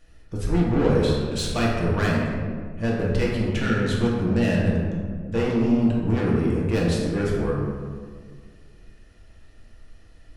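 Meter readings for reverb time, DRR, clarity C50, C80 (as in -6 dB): 1.8 s, -4.5 dB, 0.0 dB, 2.0 dB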